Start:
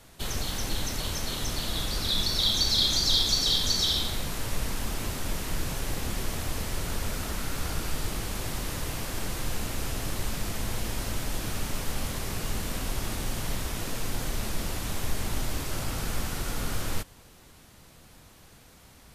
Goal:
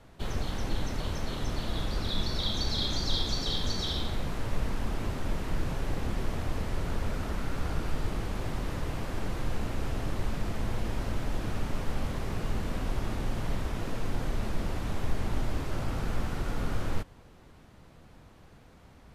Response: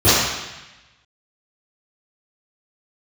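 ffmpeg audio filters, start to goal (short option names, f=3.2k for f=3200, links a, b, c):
-af "lowpass=f=1.3k:p=1,volume=1dB"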